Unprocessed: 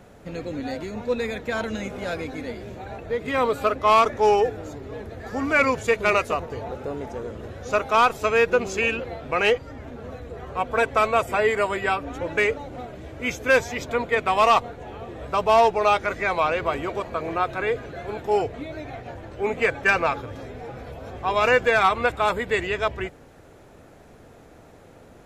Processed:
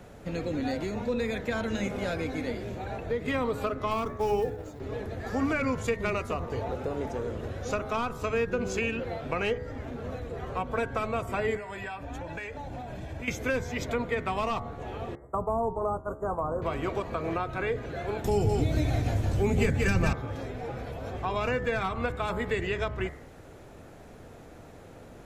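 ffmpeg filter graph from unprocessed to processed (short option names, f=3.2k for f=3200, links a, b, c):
-filter_complex "[0:a]asettb=1/sr,asplit=3[a][b][c];[a]atrim=end=3.914[d];[b]atrim=start=3.91:end=4.8,asetpts=PTS-STARTPTS,afade=t=in:d=0.004:c=qsin,afade=t=out:st=0.886:d=0.004:c=qsin,agate=range=-33dB:threshold=-30dB:ratio=3:release=100:detection=peak,acrusher=bits=7:mode=log:mix=0:aa=0.000001[e];[c]atrim=start=4.796[f];[d][e]acrossfade=d=0.004:c1=hsin:c2=qsin[g];[g][f]acrossfade=d=0.004:c1=qsin:c2=hsin,asettb=1/sr,asplit=3[h][i][j];[h]atrim=end=11.564[k];[i]atrim=start=11.56:end=13.28,asetpts=PTS-STARTPTS,afade=t=in:d=0.004:c=qsin,afade=t=out:st=1.716:d=0.004:c=qsin,aecho=1:1:1.2:0.44,atrim=end_sample=75852,acompressor=threshold=-34dB:ratio=10:attack=3.2:release=140:knee=1:detection=peak[l];[j]atrim=start=13.276[m];[k][l]acrossfade=d=0.004:c1=hsin:c2=qsin[n];[n][m]acrossfade=d=0.004:c1=qsin:c2=hsin,asettb=1/sr,asplit=3[o][p][q];[o]atrim=end=15.154[r];[p]atrim=start=15.15:end=16.62,asetpts=PTS-STARTPTS,afade=t=in:d=0.004:c=qsin,afade=t=out:st=1.466:d=0.004:c=qsin,agate=range=-33dB:threshold=-25dB:ratio=3:release=100:detection=peak,asuperstop=centerf=3200:order=12:qfactor=0.51[s];[q]atrim=start=16.616[t];[r][s]acrossfade=d=0.004:c1=hsin:c2=qsin[u];[u][t]acrossfade=d=0.004:c1=qsin:c2=hsin,asettb=1/sr,asplit=3[v][w][x];[v]atrim=end=18.244[y];[w]atrim=start=18.24:end=20.13,asetpts=PTS-STARTPTS,afade=t=in:d=0.004:c=qsin,afade=t=out:st=1.886:d=0.004:c=qsin,bass=f=250:g=12,treble=f=4k:g=15,aecho=1:1:178:0.562,atrim=end_sample=83349[z];[x]atrim=start=20.126[aa];[y][z]acrossfade=d=0.004:c1=hsin:c2=qsin[ab];[ab][aa]acrossfade=d=0.004:c1=qsin:c2=hsin,lowshelf=f=170:g=3,bandreject=f=70.67:t=h:w=4,bandreject=f=141.34:t=h:w=4,bandreject=f=212.01:t=h:w=4,bandreject=f=282.68:t=h:w=4,bandreject=f=353.35:t=h:w=4,bandreject=f=424.02:t=h:w=4,bandreject=f=494.69:t=h:w=4,bandreject=f=565.36:t=h:w=4,bandreject=f=636.03:t=h:w=4,bandreject=f=706.7:t=h:w=4,bandreject=f=777.37:t=h:w=4,bandreject=f=848.04:t=h:w=4,bandreject=f=918.71:t=h:w=4,bandreject=f=989.38:t=h:w=4,bandreject=f=1.06005k:t=h:w=4,bandreject=f=1.13072k:t=h:w=4,bandreject=f=1.20139k:t=h:w=4,bandreject=f=1.27206k:t=h:w=4,bandreject=f=1.34273k:t=h:w=4,bandreject=f=1.4134k:t=h:w=4,bandreject=f=1.48407k:t=h:w=4,bandreject=f=1.55474k:t=h:w=4,bandreject=f=1.62541k:t=h:w=4,bandreject=f=1.69608k:t=h:w=4,bandreject=f=1.76675k:t=h:w=4,bandreject=f=1.83742k:t=h:w=4,bandreject=f=1.90809k:t=h:w=4,bandreject=f=1.97876k:t=h:w=4,bandreject=f=2.04943k:t=h:w=4,bandreject=f=2.1201k:t=h:w=4,bandreject=f=2.19077k:t=h:w=4,acrossover=split=300[ac][ad];[ad]acompressor=threshold=-29dB:ratio=6[ae];[ac][ae]amix=inputs=2:normalize=0"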